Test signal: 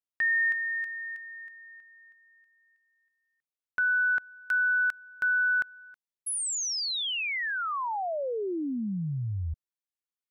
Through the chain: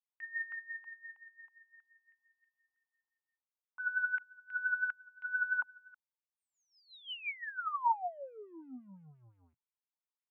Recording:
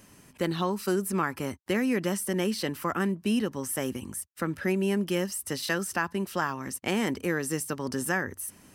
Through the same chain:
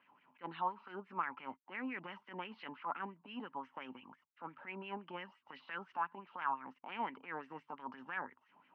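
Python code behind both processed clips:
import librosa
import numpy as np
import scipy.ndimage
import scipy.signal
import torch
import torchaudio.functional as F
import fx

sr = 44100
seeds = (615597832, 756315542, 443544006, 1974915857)

y = fx.transient(x, sr, attack_db=-12, sustain_db=0)
y = fx.filter_lfo_bandpass(y, sr, shape='sine', hz=5.8, low_hz=820.0, high_hz=2100.0, q=4.2)
y = fx.cabinet(y, sr, low_hz=100.0, low_slope=12, high_hz=3200.0, hz=(120.0, 170.0, 260.0, 910.0, 1800.0, 2900.0), db=(4, 7, 9, 7, -9, 5))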